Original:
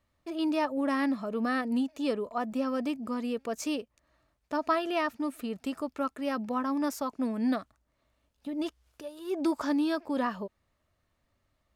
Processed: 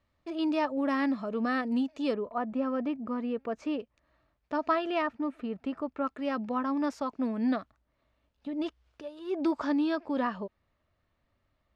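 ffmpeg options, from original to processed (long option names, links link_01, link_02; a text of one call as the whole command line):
ffmpeg -i in.wav -af "asetnsamples=nb_out_samples=441:pad=0,asendcmd='2.14 lowpass f 2100;3.8 lowpass f 3800;5.02 lowpass f 2200;6.07 lowpass f 4000',lowpass=5200" out.wav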